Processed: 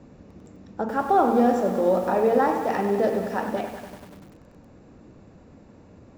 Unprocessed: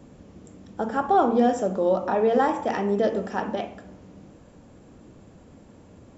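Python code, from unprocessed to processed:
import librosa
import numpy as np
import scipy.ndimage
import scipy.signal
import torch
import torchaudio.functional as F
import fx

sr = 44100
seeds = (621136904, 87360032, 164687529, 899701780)

y = scipy.signal.sosfilt(scipy.signal.butter(2, 5400.0, 'lowpass', fs=sr, output='sos'), x)
y = fx.notch(y, sr, hz=3200.0, q=6.1)
y = fx.echo_crushed(y, sr, ms=97, feedback_pct=80, bits=7, wet_db=-10)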